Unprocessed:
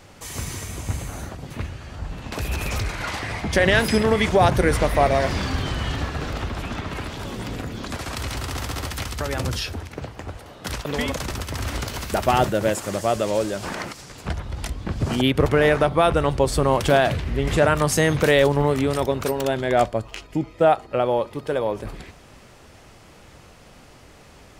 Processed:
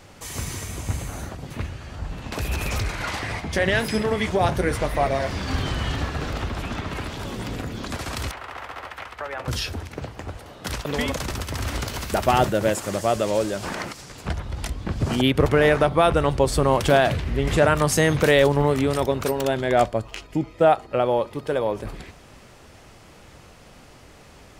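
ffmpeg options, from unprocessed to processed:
ffmpeg -i in.wav -filter_complex "[0:a]asplit=3[link_01][link_02][link_03];[link_01]afade=type=out:start_time=3.39:duration=0.02[link_04];[link_02]flanger=delay=5.5:depth=7.1:regen=-54:speed=1:shape=triangular,afade=type=in:start_time=3.39:duration=0.02,afade=type=out:start_time=5.47:duration=0.02[link_05];[link_03]afade=type=in:start_time=5.47:duration=0.02[link_06];[link_04][link_05][link_06]amix=inputs=3:normalize=0,asettb=1/sr,asplit=3[link_07][link_08][link_09];[link_07]atrim=end=8.314[link_10];[link_08]atrim=start=8.31:end=9.48,asetpts=PTS-STARTPTS,afade=type=in:duration=0.004:curve=qsin,afade=type=out:start_time=1.166:duration=0.004:curve=qsin,acrossover=split=500 2600:gain=0.1 1 0.0891[link_11][link_12][link_13];[link_11][link_12][link_13]amix=inputs=3:normalize=0[link_14];[link_09]atrim=start=9.476[link_15];[link_10][link_14]acrossfade=duration=0.004:curve1=hsin:curve2=qsin[link_16];[link_16][link_15]acrossfade=duration=0.004:curve1=qsin:curve2=hsin" out.wav

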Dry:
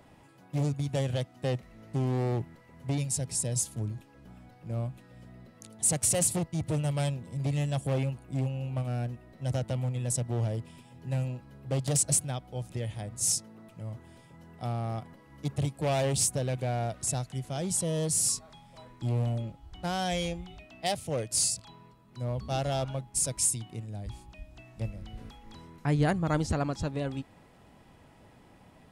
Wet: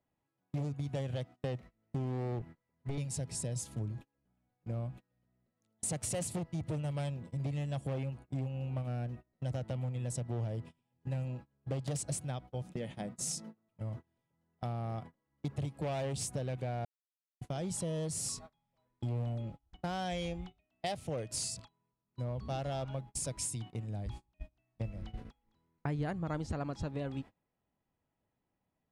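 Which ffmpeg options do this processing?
ffmpeg -i in.wav -filter_complex "[0:a]asettb=1/sr,asplit=3[link_01][link_02][link_03];[link_01]atrim=end=2.394[link_04];[link_02]atrim=start=2.39:end=2.98,asetpts=PTS-STARTPTS,afade=type=in:duration=0.004:curve=qsin,afade=type=out:start_time=0.586:duration=0.004:curve=qsin,aeval=exprs='clip(val(0),-1,0.0141)':channel_layout=same[link_05];[link_03]atrim=start=2.976[link_06];[link_04][link_05]acrossfade=duration=0.004:curve1=hsin:curve2=qsin[link_07];[link_07][link_06]acrossfade=duration=0.004:curve1=qsin:curve2=hsin,asettb=1/sr,asplit=3[link_08][link_09][link_10];[link_08]atrim=end=12.624[link_11];[link_09]atrim=start=12.62:end=13.55,asetpts=PTS-STARTPTS,afade=type=in:duration=0.004:curve=qsin,afade=type=out:start_time=0.926:duration=0.004:curve=qsin,lowshelf=frequency=130:width_type=q:width=3:gain=-7.5[link_12];[link_10]atrim=start=13.546[link_13];[link_11][link_12]acrossfade=duration=0.004:curve1=hsin:curve2=qsin[link_14];[link_14][link_13]acrossfade=duration=0.004:curve1=qsin:curve2=hsin,asplit=3[link_15][link_16][link_17];[link_15]atrim=end=16.85,asetpts=PTS-STARTPTS,afade=type=out:start_time=16.846:duration=0.004:curve=hsin[link_18];[link_16]atrim=start=16.85:end=17.41,asetpts=PTS-STARTPTS,volume=0[link_19];[link_17]atrim=start=17.41,asetpts=PTS-STARTPTS,afade=type=in:duration=0.004:curve=hsin[link_20];[link_18][link_19][link_20]concat=n=3:v=0:a=1,agate=range=-30dB:threshold=-42dB:ratio=16:detection=peak,lowpass=frequency=3500:poles=1,acompressor=threshold=-38dB:ratio=3,volume=2dB" out.wav

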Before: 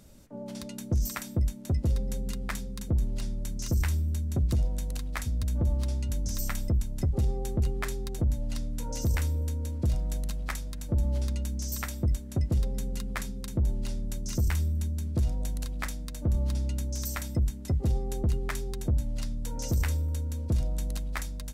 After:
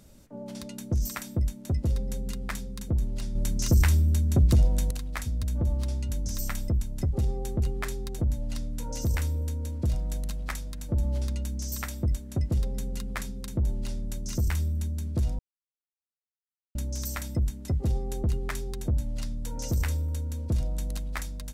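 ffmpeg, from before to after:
ffmpeg -i in.wav -filter_complex "[0:a]asettb=1/sr,asplit=3[link_01][link_02][link_03];[link_01]atrim=end=3.354[link_04];[link_02]atrim=start=3.35:end=4.91,asetpts=PTS-STARTPTS,afade=type=in:duration=0.004:curve=qsin,afade=type=out:start_time=1.556:duration=0.004:curve=qsin,acontrast=62[link_05];[link_03]atrim=start=4.906[link_06];[link_04][link_05]acrossfade=duration=0.004:curve1=hsin:curve2=qsin[link_07];[link_07][link_06]acrossfade=duration=0.004:curve1=qsin:curve2=hsin,asplit=3[link_08][link_09][link_10];[link_08]atrim=end=15.39,asetpts=PTS-STARTPTS,afade=type=out:start_time=15.386:duration=0.004:curve=hsin[link_11];[link_09]atrim=start=15.39:end=16.75,asetpts=PTS-STARTPTS,volume=0[link_12];[link_10]atrim=start=16.75,asetpts=PTS-STARTPTS,afade=type=in:duration=0.004:curve=hsin[link_13];[link_11][link_12][link_13]concat=n=3:v=0:a=1" out.wav

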